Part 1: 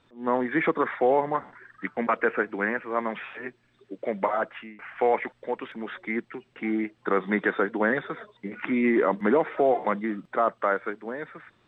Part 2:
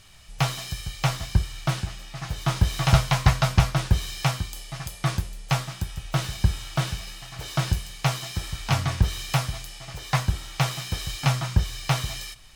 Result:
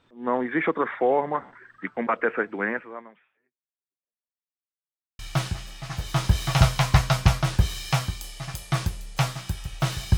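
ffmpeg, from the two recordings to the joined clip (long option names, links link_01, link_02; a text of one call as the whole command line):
ffmpeg -i cue0.wav -i cue1.wav -filter_complex "[0:a]apad=whole_dur=10.17,atrim=end=10.17,asplit=2[link_01][link_02];[link_01]atrim=end=4.47,asetpts=PTS-STARTPTS,afade=type=out:start_time=2.77:duration=1.7:curve=exp[link_03];[link_02]atrim=start=4.47:end=5.19,asetpts=PTS-STARTPTS,volume=0[link_04];[1:a]atrim=start=1.51:end=6.49,asetpts=PTS-STARTPTS,afade=type=in:duration=0.004:curve=hsin[link_05];[link_03][link_04][link_05]concat=n=3:v=0:a=1" out.wav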